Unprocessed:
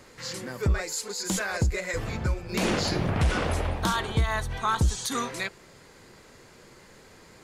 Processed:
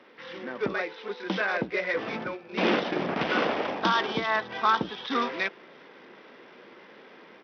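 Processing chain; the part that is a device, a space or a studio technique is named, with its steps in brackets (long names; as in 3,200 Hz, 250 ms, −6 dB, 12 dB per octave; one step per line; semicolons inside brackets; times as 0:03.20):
0:02.24–0:03.31: noise gate −26 dBFS, range −8 dB
Bluetooth headset (high-pass filter 220 Hz 24 dB per octave; automatic gain control gain up to 5 dB; downsampling to 8,000 Hz; level −1.5 dB; SBC 64 kbit/s 44,100 Hz)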